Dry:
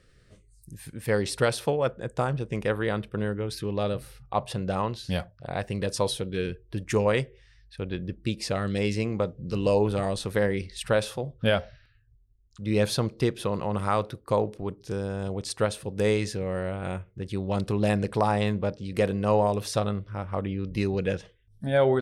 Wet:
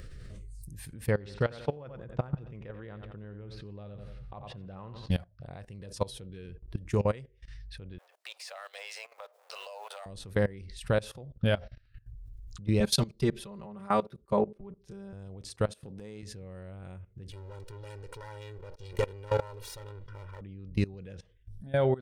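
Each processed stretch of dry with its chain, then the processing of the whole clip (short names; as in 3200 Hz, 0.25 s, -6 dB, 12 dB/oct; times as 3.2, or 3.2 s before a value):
1.11–5.11 LPF 3300 Hz + feedback echo 89 ms, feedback 34%, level -12 dB
7.98–10.06 G.711 law mismatch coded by mu + steep high-pass 600 Hz 48 dB/oct
12.8–15.13 comb 5.1 ms, depth 91% + three-band expander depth 100%
15.67–16.23 HPF 170 Hz 6 dB/oct + dynamic EQ 220 Hz, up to +5 dB, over -41 dBFS, Q 1.3 + compressor 16:1, threshold -34 dBFS
17.31–20.41 minimum comb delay 2.1 ms + low shelf 410 Hz -9 dB + comb 2.1 ms, depth 82%
whole clip: upward compressor, threshold -25 dBFS; low shelf 150 Hz +12 dB; level quantiser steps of 20 dB; gain -4 dB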